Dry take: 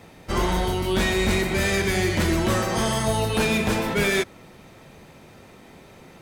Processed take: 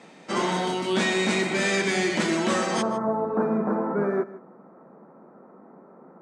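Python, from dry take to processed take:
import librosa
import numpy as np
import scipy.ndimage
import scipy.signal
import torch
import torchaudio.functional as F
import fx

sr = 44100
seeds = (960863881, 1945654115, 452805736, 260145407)

y = fx.ellip_bandpass(x, sr, low_hz=190.0, high_hz=fx.steps((0.0, 8200.0), (2.81, 1300.0)), order=3, stop_db=40)
y = y + 10.0 ** (-17.5 / 20.0) * np.pad(y, (int(154 * sr / 1000.0), 0))[:len(y)]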